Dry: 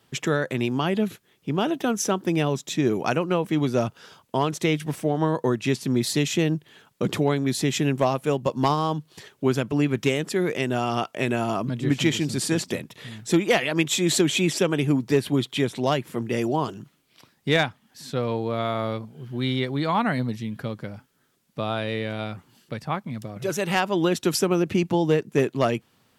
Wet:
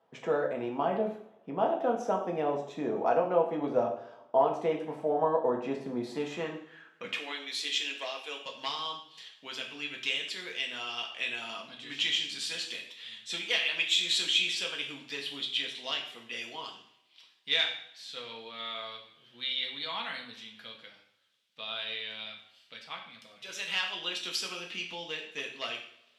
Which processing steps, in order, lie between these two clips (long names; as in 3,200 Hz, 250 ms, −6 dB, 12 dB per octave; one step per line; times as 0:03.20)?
band-pass filter sweep 700 Hz → 3,300 Hz, 0:06.03–0:07.43
0:07.09–0:08.45: Butterworth high-pass 270 Hz 36 dB per octave
coupled-rooms reverb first 0.57 s, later 2 s, from −25 dB, DRR 0 dB